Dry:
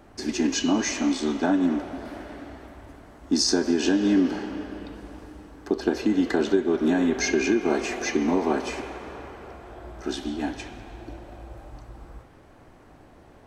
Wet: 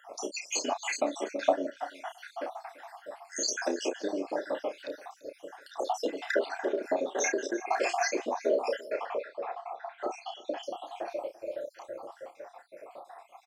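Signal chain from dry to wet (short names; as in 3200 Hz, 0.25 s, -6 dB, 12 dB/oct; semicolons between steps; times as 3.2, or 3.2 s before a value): random spectral dropouts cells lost 71%; 8.91–10.63 LPF 3400 Hz 12 dB/oct; compressor 3:1, threshold -34 dBFS, peak gain reduction 13 dB; resonant high-pass 560 Hz, resonance Q 5.2; doubler 32 ms -8.5 dB; echo 0.339 s -19 dB; gain +5 dB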